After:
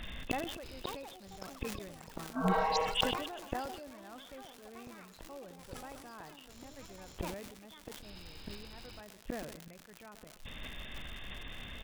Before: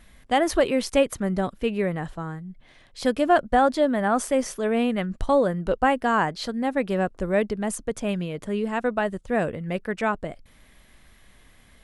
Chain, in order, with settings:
hearing-aid frequency compression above 2,500 Hz 4 to 1
healed spectral selection 0:02.34–0:02.84, 360–1,100 Hz before
gate with flip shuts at −25 dBFS, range −37 dB
surface crackle 160 per second −49 dBFS
repeating echo 126 ms, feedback 58%, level −17 dB
delay with pitch and tempo change per echo 634 ms, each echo +6 semitones, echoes 3, each echo −6 dB
in parallel at −6 dB: wrap-around overflow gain 25 dB
on the sum: level that may fall only so fast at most 50 dB per second
level +4 dB

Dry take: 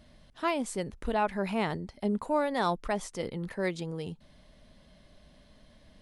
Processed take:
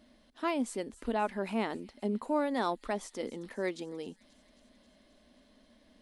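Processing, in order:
low shelf with overshoot 190 Hz −8 dB, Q 3
delay with a high-pass on its return 267 ms, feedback 70%, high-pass 4,100 Hz, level −15 dB
level −4 dB

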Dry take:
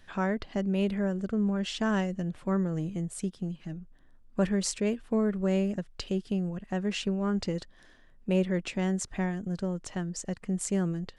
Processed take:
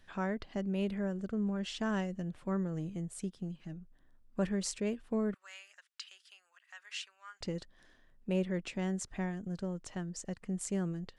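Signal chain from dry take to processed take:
0:05.34–0:07.41: high-pass filter 1,300 Hz 24 dB per octave
level −6 dB

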